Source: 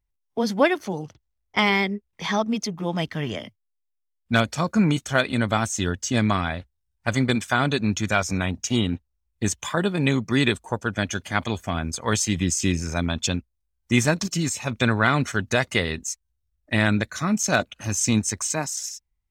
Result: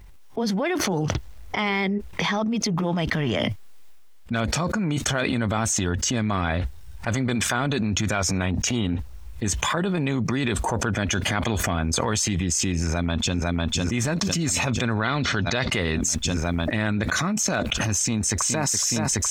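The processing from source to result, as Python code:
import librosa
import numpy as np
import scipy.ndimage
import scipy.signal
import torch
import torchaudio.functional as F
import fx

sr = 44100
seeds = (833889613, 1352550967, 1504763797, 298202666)

y = fx.echo_throw(x, sr, start_s=12.75, length_s=0.61, ms=500, feedback_pct=75, wet_db=-18.0)
y = fx.lowpass_res(y, sr, hz=4300.0, q=2.8, at=(15.0, 15.71), fade=0.02)
y = fx.echo_throw(y, sr, start_s=17.96, length_s=0.73, ms=420, feedback_pct=70, wet_db=-14.5)
y = fx.high_shelf(y, sr, hz=4700.0, db=-7.5)
y = fx.transient(y, sr, attack_db=-5, sustain_db=5)
y = fx.env_flatten(y, sr, amount_pct=100)
y = y * librosa.db_to_amplitude(-7.0)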